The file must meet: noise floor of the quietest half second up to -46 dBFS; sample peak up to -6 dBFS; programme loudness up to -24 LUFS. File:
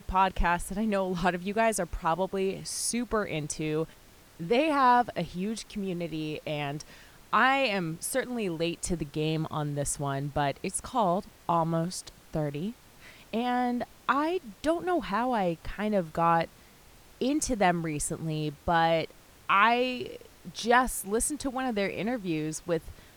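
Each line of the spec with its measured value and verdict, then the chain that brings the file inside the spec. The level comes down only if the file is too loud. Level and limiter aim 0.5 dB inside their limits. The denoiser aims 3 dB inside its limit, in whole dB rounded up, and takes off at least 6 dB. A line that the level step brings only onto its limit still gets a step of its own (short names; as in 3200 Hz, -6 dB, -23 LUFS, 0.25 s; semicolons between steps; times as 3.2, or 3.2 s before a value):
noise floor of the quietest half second -55 dBFS: OK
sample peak -8.5 dBFS: OK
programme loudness -29.0 LUFS: OK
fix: none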